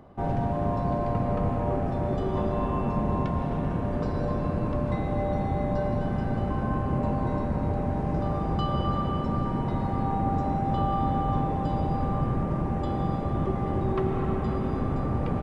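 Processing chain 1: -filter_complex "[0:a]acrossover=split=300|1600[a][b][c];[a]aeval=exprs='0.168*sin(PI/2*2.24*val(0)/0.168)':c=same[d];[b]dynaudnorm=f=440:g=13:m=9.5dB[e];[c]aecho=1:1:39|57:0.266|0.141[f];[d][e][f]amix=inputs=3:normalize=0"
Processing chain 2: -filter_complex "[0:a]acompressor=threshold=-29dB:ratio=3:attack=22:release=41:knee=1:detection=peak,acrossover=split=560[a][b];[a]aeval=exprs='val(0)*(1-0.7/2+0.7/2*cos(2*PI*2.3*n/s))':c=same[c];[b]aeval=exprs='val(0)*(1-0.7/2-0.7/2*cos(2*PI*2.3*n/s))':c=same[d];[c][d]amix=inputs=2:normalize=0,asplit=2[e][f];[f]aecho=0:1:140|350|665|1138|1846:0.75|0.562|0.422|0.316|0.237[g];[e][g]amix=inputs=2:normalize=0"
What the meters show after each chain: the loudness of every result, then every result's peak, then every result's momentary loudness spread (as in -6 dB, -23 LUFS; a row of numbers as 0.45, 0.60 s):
-20.0, -29.5 LUFS; -7.0, -15.0 dBFS; 3, 1 LU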